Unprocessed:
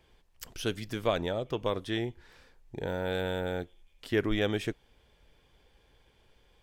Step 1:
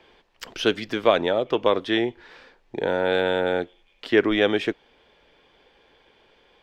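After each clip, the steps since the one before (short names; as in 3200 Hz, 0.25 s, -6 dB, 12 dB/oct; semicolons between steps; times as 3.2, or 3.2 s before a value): three-band isolator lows -17 dB, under 220 Hz, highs -19 dB, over 4900 Hz; in parallel at +0.5 dB: vocal rider 0.5 s; on the sum: gain +5 dB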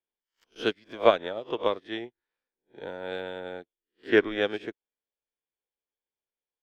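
spectral swells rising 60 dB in 0.44 s; upward expander 2.5:1, over -41 dBFS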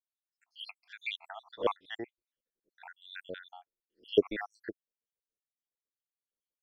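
random spectral dropouts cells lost 80%; spectral noise reduction 9 dB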